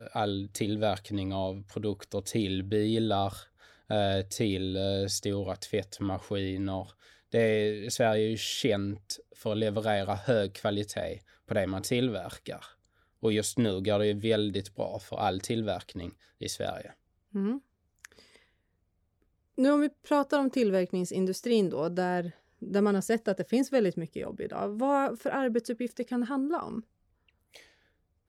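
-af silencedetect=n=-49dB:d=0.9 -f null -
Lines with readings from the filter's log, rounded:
silence_start: 18.36
silence_end: 19.58 | silence_duration: 1.22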